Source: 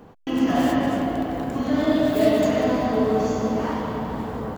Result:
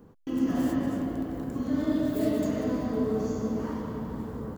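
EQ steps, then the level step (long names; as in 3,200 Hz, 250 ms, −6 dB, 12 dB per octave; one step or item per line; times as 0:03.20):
parametric band 730 Hz −10 dB 0.72 octaves
parametric band 2,700 Hz −10.5 dB 1.9 octaves
−4.5 dB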